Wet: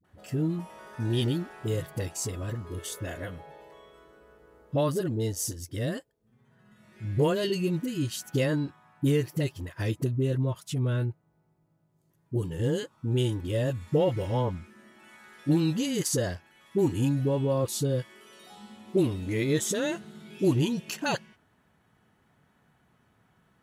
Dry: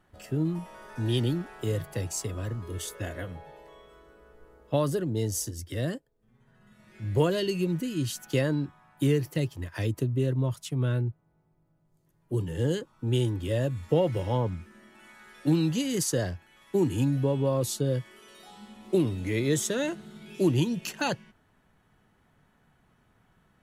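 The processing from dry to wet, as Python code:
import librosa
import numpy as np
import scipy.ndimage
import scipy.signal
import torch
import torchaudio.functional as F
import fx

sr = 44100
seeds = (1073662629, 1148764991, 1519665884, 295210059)

y = scipy.signal.sosfilt(scipy.signal.butter(2, 70.0, 'highpass', fs=sr, output='sos'), x)
y = fx.dispersion(y, sr, late='highs', ms=45.0, hz=410.0)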